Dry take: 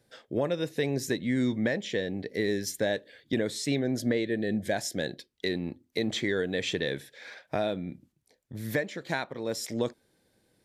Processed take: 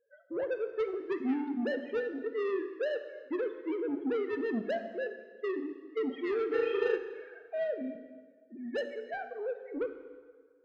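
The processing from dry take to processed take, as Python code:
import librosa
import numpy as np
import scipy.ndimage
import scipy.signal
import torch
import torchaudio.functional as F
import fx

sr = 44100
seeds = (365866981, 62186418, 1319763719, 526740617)

y = fx.sine_speech(x, sr)
y = scipy.signal.sosfilt(scipy.signal.bessel(2, 1400.0, 'lowpass', norm='mag', fs=sr, output='sos'), y)
y = fx.spec_topn(y, sr, count=16)
y = 10.0 ** (-28.5 / 20.0) * np.tanh(y / 10.0 ** (-28.5 / 20.0))
y = fx.room_flutter(y, sr, wall_m=6.5, rt60_s=0.95, at=(6.51, 6.96), fade=0.02)
y = fx.rev_plate(y, sr, seeds[0], rt60_s=1.6, hf_ratio=0.8, predelay_ms=0, drr_db=7.5)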